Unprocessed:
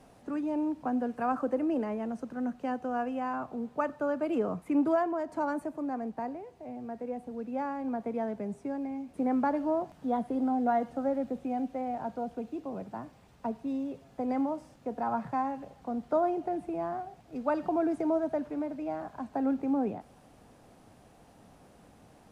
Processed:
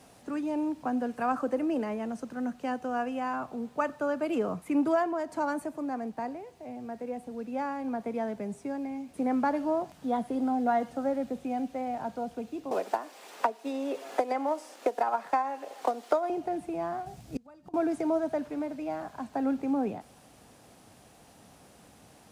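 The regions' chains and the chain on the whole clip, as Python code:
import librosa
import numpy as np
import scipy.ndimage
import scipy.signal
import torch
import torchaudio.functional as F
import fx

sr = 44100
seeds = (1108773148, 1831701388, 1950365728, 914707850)

y = fx.chain(x, sr, fx.highpass(hz=360.0, slope=24),
    fx.transient(attack_db=9, sustain_db=0),
    fx.band_squash(depth_pct=100), at=(12.71, 16.3))
y = fx.chain(y, sr, fx.bass_treble(bass_db=13, treble_db=6),
    fx.doubler(ms=15.0, db=-12),
    fx.gate_flip(shuts_db=-23.0, range_db=-27), at=(17.06, 17.74))
y = scipy.signal.sosfilt(scipy.signal.butter(2, 48.0, 'highpass', fs=sr, output='sos'), y)
y = fx.high_shelf(y, sr, hz=2200.0, db=9.5)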